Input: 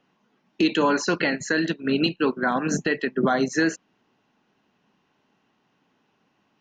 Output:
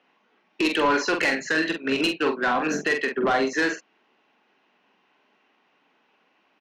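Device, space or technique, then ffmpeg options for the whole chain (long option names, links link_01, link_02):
intercom: -filter_complex "[0:a]highpass=360,lowpass=4400,equalizer=frequency=2300:width_type=o:width=0.54:gain=5,asoftclip=type=tanh:threshold=-19.5dB,asplit=2[link_01][link_02];[link_02]adelay=45,volume=-6dB[link_03];[link_01][link_03]amix=inputs=2:normalize=0,volume=3dB"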